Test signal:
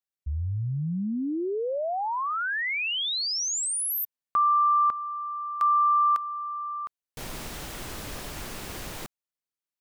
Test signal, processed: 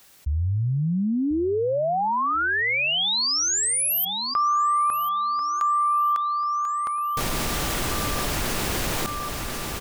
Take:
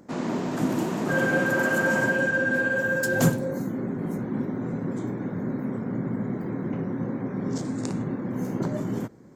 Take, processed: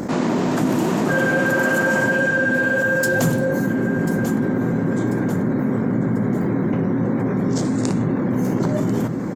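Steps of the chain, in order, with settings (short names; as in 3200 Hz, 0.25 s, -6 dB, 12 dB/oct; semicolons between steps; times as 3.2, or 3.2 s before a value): on a send: feedback echo 1.041 s, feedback 42%, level -16 dB; on the sum: fast leveller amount 70%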